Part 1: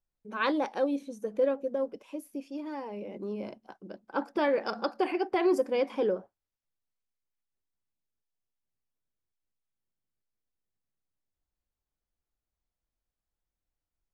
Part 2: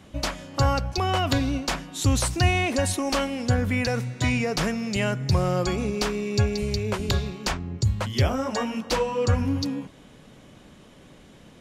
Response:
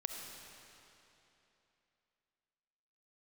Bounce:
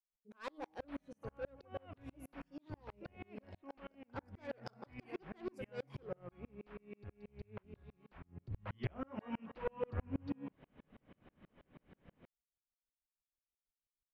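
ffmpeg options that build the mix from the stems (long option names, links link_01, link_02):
-filter_complex "[0:a]bandreject=frequency=157:width_type=h:width=4,bandreject=frequency=314:width_type=h:width=4,bandreject=frequency=471:width_type=h:width=4,bandreject=frequency=628:width_type=h:width=4,bandreject=frequency=785:width_type=h:width=4,bandreject=frequency=942:width_type=h:width=4,bandreject=frequency=1099:width_type=h:width=4,asoftclip=type=tanh:threshold=-26dB,volume=-7dB[link_01];[1:a]aeval=exprs='clip(val(0),-1,0.0841)':channel_layout=same,lowpass=frequency=2600:width=0.5412,lowpass=frequency=2600:width=1.3066,alimiter=limit=-17.5dB:level=0:latency=1:release=472,adelay=650,volume=-4.5dB,afade=type=in:start_time=8.26:duration=0.6:silence=0.281838[link_02];[link_01][link_02]amix=inputs=2:normalize=0,aeval=exprs='val(0)*pow(10,-37*if(lt(mod(-6.2*n/s,1),2*abs(-6.2)/1000),1-mod(-6.2*n/s,1)/(2*abs(-6.2)/1000),(mod(-6.2*n/s,1)-2*abs(-6.2)/1000)/(1-2*abs(-6.2)/1000))/20)':channel_layout=same"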